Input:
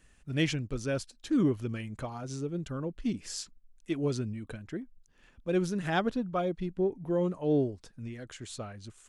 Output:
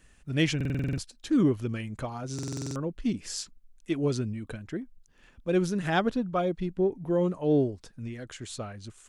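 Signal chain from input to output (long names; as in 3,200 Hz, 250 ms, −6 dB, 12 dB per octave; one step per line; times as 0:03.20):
buffer that repeats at 0:00.56/0:02.34, samples 2,048, times 8
level +3 dB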